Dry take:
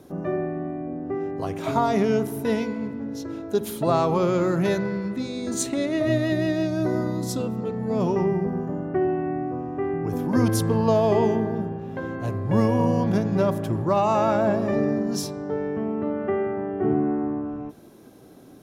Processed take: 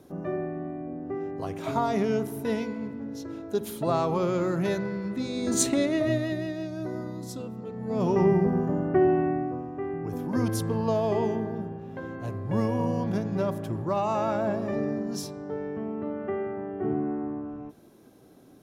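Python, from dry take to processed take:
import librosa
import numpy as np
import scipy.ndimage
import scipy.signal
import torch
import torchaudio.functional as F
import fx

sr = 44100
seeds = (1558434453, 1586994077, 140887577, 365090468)

y = fx.gain(x, sr, db=fx.line((4.98, -4.5), (5.64, 3.0), (6.53, -9.5), (7.67, -9.5), (8.27, 2.0), (9.21, 2.0), (9.72, -6.0)))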